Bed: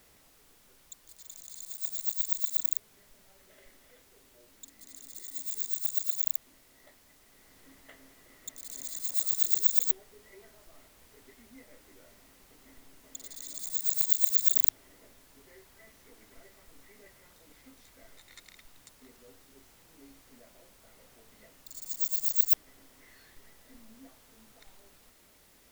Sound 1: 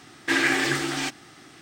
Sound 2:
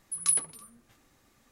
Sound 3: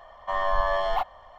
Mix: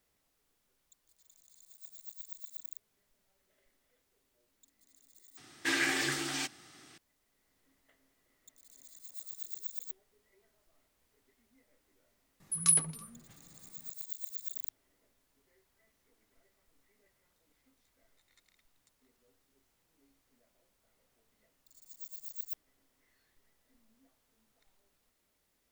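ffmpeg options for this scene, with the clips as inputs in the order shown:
ffmpeg -i bed.wav -i cue0.wav -i cue1.wav -filter_complex "[0:a]volume=-16.5dB[link_01];[1:a]highshelf=frequency=3300:gain=8[link_02];[2:a]equalizer=frequency=160:width_type=o:width=0.53:gain=15[link_03];[link_01]asplit=2[link_04][link_05];[link_04]atrim=end=5.374[link_06];[link_02]atrim=end=1.61,asetpts=PTS-STARTPTS,volume=-10.5dB[link_07];[link_05]atrim=start=6.976[link_08];[link_03]atrim=end=1.51,asetpts=PTS-STARTPTS,afade=type=in:duration=0.004:curve=hsin,afade=type=out:start_time=1.506:duration=0.004:curve=hsin,adelay=12400[link_09];[link_06][link_07]acrossfade=duration=0.004:curve1=hsin:curve2=hsin[link_10];[link_10][link_08]acrossfade=duration=0.004:curve1=hsin:curve2=hsin[link_11];[link_11][link_09]amix=inputs=2:normalize=0" out.wav

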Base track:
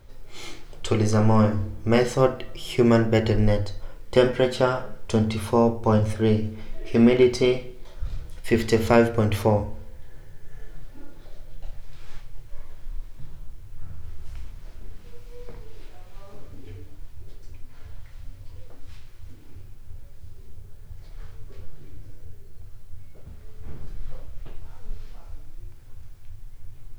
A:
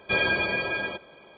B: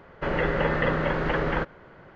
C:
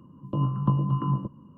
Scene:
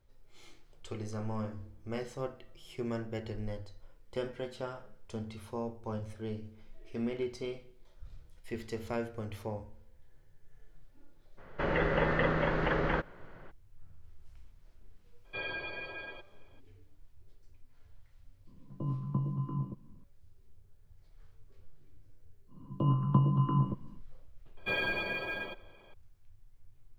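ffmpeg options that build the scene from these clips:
ffmpeg -i bed.wav -i cue0.wav -i cue1.wav -i cue2.wav -filter_complex "[1:a]asplit=2[link_01][link_02];[3:a]asplit=2[link_03][link_04];[0:a]volume=-18.5dB[link_05];[link_01]equalizer=frequency=210:width_type=o:width=0.36:gain=-11.5[link_06];[link_03]tiltshelf=frequency=1300:gain=7[link_07];[link_02]acrusher=bits=8:mode=log:mix=0:aa=0.000001[link_08];[2:a]atrim=end=2.15,asetpts=PTS-STARTPTS,volume=-4.5dB,afade=type=in:duration=0.02,afade=type=out:start_time=2.13:duration=0.02,adelay=11370[link_09];[link_06]atrim=end=1.37,asetpts=PTS-STARTPTS,volume=-14.5dB,afade=type=in:duration=0.02,afade=type=out:start_time=1.35:duration=0.02,adelay=672084S[link_10];[link_07]atrim=end=1.57,asetpts=PTS-STARTPTS,volume=-16dB,afade=type=in:duration=0.004:curve=hsin,afade=type=out:start_time=1.566:duration=0.004:curve=hsin,adelay=18470[link_11];[link_04]atrim=end=1.57,asetpts=PTS-STARTPTS,volume=-2.5dB,afade=type=in:duration=0.1,afade=type=out:start_time=1.47:duration=0.1,adelay=22470[link_12];[link_08]atrim=end=1.37,asetpts=PTS-STARTPTS,volume=-8.5dB,afade=type=in:duration=0.004:curve=hsin,afade=type=out:start_time=1.366:duration=0.004:curve=hsin,adelay=24570[link_13];[link_05][link_09][link_10][link_11][link_12][link_13]amix=inputs=6:normalize=0" out.wav

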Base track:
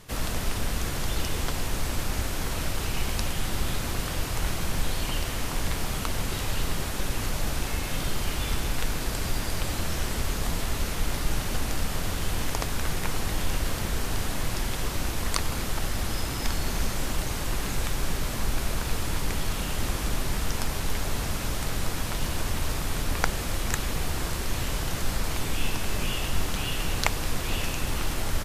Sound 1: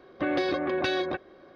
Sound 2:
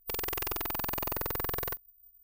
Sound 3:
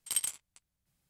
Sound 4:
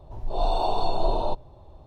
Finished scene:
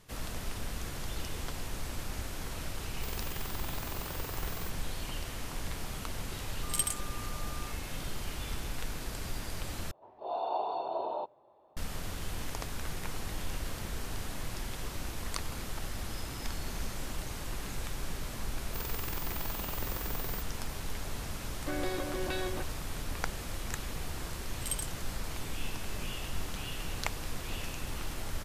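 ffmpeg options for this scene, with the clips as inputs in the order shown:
ffmpeg -i bed.wav -i cue0.wav -i cue1.wav -i cue2.wav -i cue3.wav -filter_complex "[2:a]asplit=2[link_01][link_02];[3:a]asplit=2[link_03][link_04];[0:a]volume=-9.5dB[link_05];[link_01]aresample=32000,aresample=44100[link_06];[link_03]aeval=exprs='val(0)+0.00501*sin(2*PI*1200*n/s)':channel_layout=same[link_07];[4:a]highpass=450,lowpass=2200[link_08];[link_02]asoftclip=type=tanh:threshold=-23dB[link_09];[link_05]asplit=2[link_10][link_11];[link_10]atrim=end=9.914[link_12];[link_08]atrim=end=1.86,asetpts=PTS-STARTPTS,volume=-6dB[link_13];[link_11]atrim=start=11.766[link_14];[link_06]atrim=end=2.23,asetpts=PTS-STARTPTS,volume=-8.5dB,afade=type=in:duration=0.004:curve=hsin,afade=type=out:start_time=2.226:duration=0.004:curve=hsin,adelay=2940[link_15];[link_07]atrim=end=1.09,asetpts=PTS-STARTPTS,afade=type=in:duration=0.004:curve=hsin,afade=type=out:start_time=1.086:duration=0.004:curve=hsin,adelay=6630[link_16];[link_09]atrim=end=2.23,asetpts=PTS-STARTPTS,volume=-5.5dB,afade=type=in:duration=0.004:curve=hsin,afade=type=out:start_time=2.226:duration=0.004:curve=hsin,adelay=18660[link_17];[1:a]atrim=end=1.55,asetpts=PTS-STARTPTS,volume=-9dB,afade=type=in:duration=0.004:curve=hsin,afade=type=out:start_time=1.546:duration=0.004:curve=hsin,adelay=21460[link_18];[link_04]atrim=end=1.09,asetpts=PTS-STARTPTS,volume=-5dB,afade=type=in:duration=0.004:curve=hsin,afade=type=out:start_time=1.086:duration=0.004:curve=hsin,adelay=24550[link_19];[link_12][link_13]acrossfade=duration=0.004:curve1=hsin:curve2=hsin[link_20];[link_20][link_14]acrossfade=duration=0.004:curve1=hsin:curve2=hsin[link_21];[link_21][link_15][link_16][link_17][link_18][link_19]amix=inputs=6:normalize=0" out.wav

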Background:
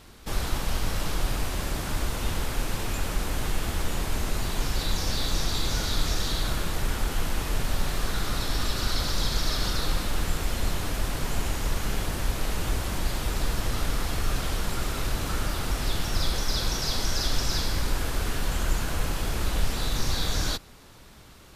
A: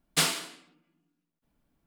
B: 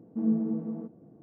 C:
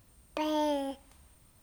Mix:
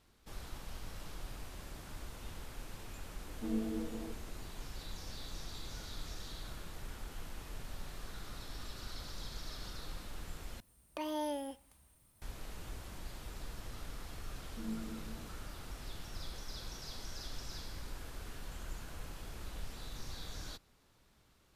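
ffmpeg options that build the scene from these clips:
ffmpeg -i bed.wav -i cue0.wav -i cue1.wav -i cue2.wav -filter_complex "[2:a]asplit=2[link_01][link_02];[0:a]volume=-18.5dB[link_03];[link_01]highpass=frequency=270:width=0.5412,highpass=frequency=270:width=1.3066[link_04];[3:a]equalizer=frequency=11000:width=2.6:gain=11[link_05];[link_03]asplit=2[link_06][link_07];[link_06]atrim=end=10.604[link_08];[link_05]atrim=end=1.62,asetpts=PTS-STARTPTS,volume=-7.5dB[link_09];[link_07]atrim=start=12.216[link_10];[link_04]atrim=end=1.22,asetpts=PTS-STARTPTS,volume=-3.5dB,afade=type=in:duration=0.004:curve=hsin,afade=type=out:start_time=1.216:duration=0.004:curve=hsin,adelay=3260[link_11];[link_02]atrim=end=1.22,asetpts=PTS-STARTPTS,volume=-15.5dB,afade=type=in:duration=0.004:curve=hsin,afade=type=out:start_time=1.216:duration=0.004:curve=hsin,adelay=14410[link_12];[link_08][link_09]acrossfade=duration=0.004:curve1=hsin:curve2=hsin[link_13];[link_13][link_10]acrossfade=duration=0.004:curve1=hsin:curve2=hsin[link_14];[link_14][link_11][link_12]amix=inputs=3:normalize=0" out.wav

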